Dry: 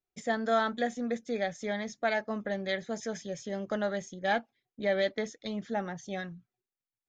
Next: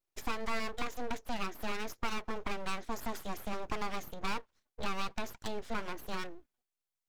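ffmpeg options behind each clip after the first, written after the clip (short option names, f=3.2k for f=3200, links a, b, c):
-filter_complex "[0:a]acrossover=split=220|1700[a][b][c];[a]acompressor=threshold=-48dB:ratio=4[d];[b]acompressor=threshold=-36dB:ratio=4[e];[c]acompressor=threshold=-44dB:ratio=4[f];[d][e][f]amix=inputs=3:normalize=0,aeval=exprs='abs(val(0))':c=same,volume=3.5dB"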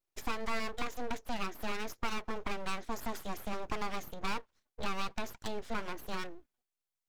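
-af anull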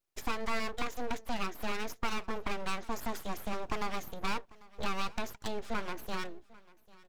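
-af "aecho=1:1:795|1590:0.075|0.0112,volume=1.5dB"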